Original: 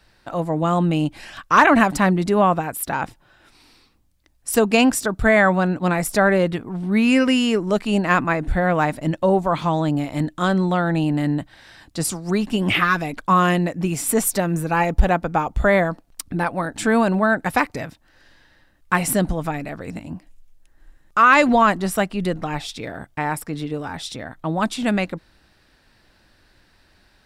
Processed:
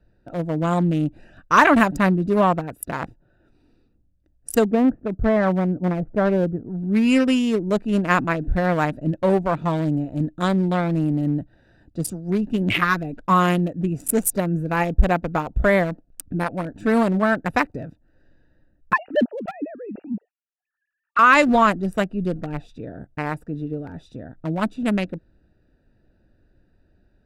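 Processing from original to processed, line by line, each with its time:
0:04.71–0:06.66: Gaussian smoothing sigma 5.9 samples
0:18.93–0:21.19: three sine waves on the formant tracks
whole clip: adaptive Wiener filter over 41 samples; high-shelf EQ 9,900 Hz +6 dB; notch filter 810 Hz, Q 12

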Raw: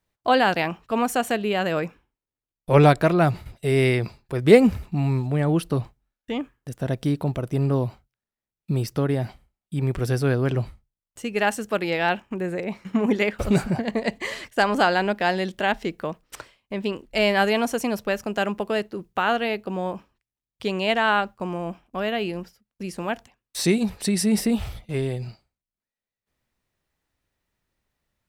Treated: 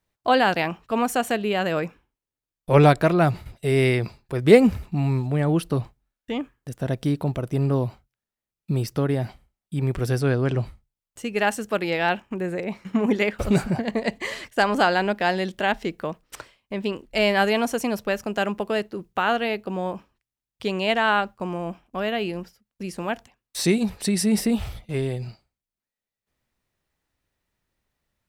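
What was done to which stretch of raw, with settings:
0:10.21–0:10.63: Butterworth low-pass 9,700 Hz 48 dB per octave

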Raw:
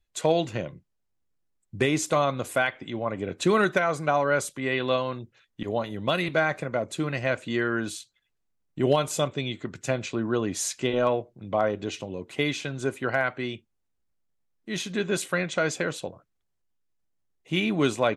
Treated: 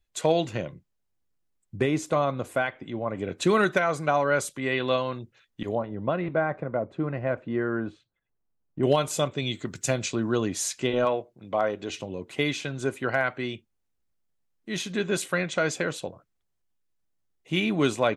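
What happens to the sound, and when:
0:01.76–0:03.15: high-shelf EQ 2,000 Hz −9 dB
0:05.75–0:08.83: low-pass filter 1,200 Hz
0:09.42–0:10.48: bass and treble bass +2 dB, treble +10 dB
0:11.05–0:11.90: low-shelf EQ 200 Hz −9.5 dB

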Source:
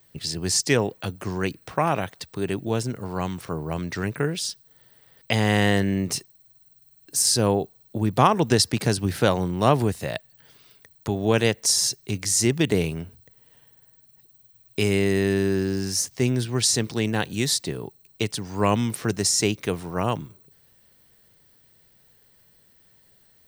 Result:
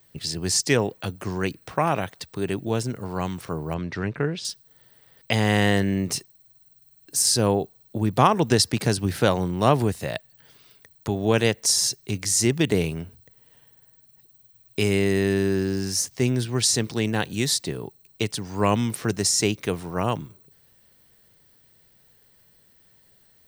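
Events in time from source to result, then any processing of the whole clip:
0:03.74–0:04.45: high-frequency loss of the air 150 metres

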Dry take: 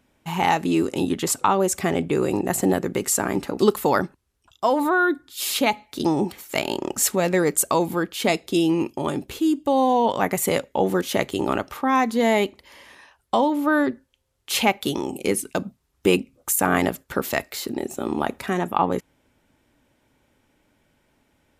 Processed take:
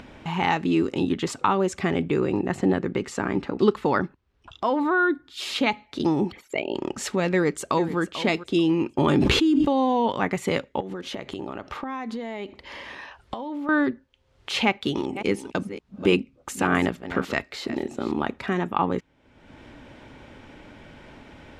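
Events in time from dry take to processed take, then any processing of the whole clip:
0:02.20–0:05.25: low-pass filter 4,000 Hz 6 dB per octave
0:06.31–0:06.75: spectral envelope exaggerated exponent 2
0:07.31–0:07.99: delay throw 440 ms, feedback 25%, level −14 dB
0:08.98–0:09.73: envelope flattener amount 100%
0:10.80–0:13.69: downward compressor 16 to 1, threshold −28 dBFS
0:14.65–0:18.13: delay that plays each chunk backwards 289 ms, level −13.5 dB
whole clip: low-pass filter 3,900 Hz 12 dB per octave; dynamic equaliser 660 Hz, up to −6 dB, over −34 dBFS, Q 1.5; upward compression, threshold −29 dBFS

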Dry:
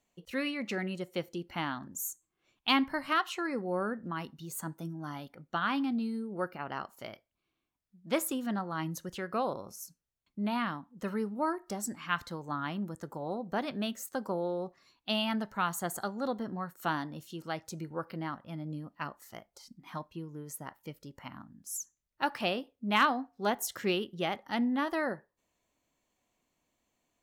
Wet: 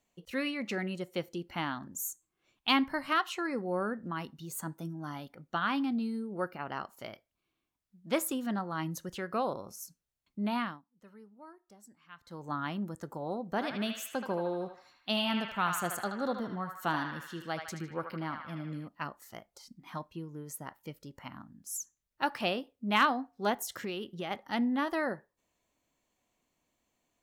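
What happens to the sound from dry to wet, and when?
0:10.59–0:12.46: duck −20.5 dB, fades 0.23 s
0:13.48–0:18.88: feedback echo with a band-pass in the loop 77 ms, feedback 72%, band-pass 1,900 Hz, level −3.5 dB
0:23.61–0:24.31: downward compressor, threshold −33 dBFS

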